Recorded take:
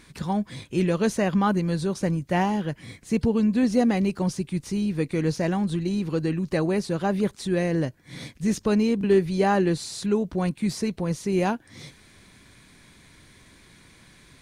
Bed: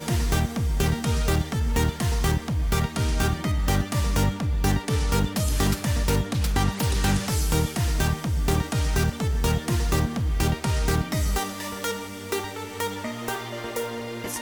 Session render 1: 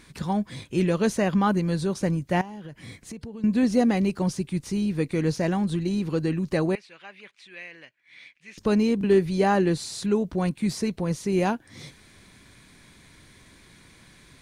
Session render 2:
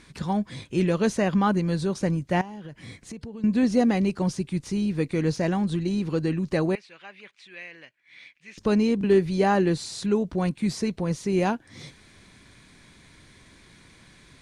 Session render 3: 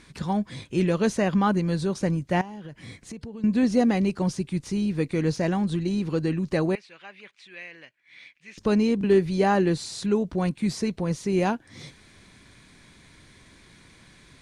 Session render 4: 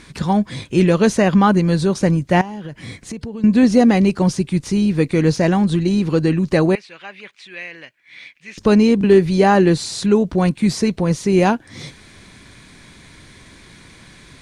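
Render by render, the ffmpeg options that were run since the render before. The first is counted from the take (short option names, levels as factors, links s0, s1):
-filter_complex "[0:a]asettb=1/sr,asplit=3[s0][s1][s2];[s0]atrim=end=2.414[s3];[s1]atrim=start=2.41:end=3.44,asetpts=PTS-STARTPTS,afade=t=in:d=0.004:c=qsin,afade=t=out:st=1.026:d=0.004:c=qsin,acompressor=threshold=0.0178:ratio=8:attack=3.2:release=140:knee=1:detection=peak[s4];[s2]atrim=start=3.436[s5];[s3][s4]acrossfade=d=0.004:c1=hsin:c2=qsin[s6];[s6][s5]acrossfade=d=0.004:c1=qsin:c2=hsin,asettb=1/sr,asplit=3[s7][s8][s9];[s7]atrim=end=6.754[s10];[s8]atrim=start=6.75:end=8.58,asetpts=PTS-STARTPTS,afade=t=in:d=0.004:c=qsin,afade=t=out:st=1.826:d=0.004:c=qsin,bandpass=f=2400:t=q:w=3.4[s11];[s9]atrim=start=8.576[s12];[s10][s11]acrossfade=d=0.004:c1=hsin:c2=qsin[s13];[s13][s12]acrossfade=d=0.004:c1=qsin:c2=hsin"
-af "lowpass=9200"
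-af anull
-af "volume=2.82,alimiter=limit=0.708:level=0:latency=1"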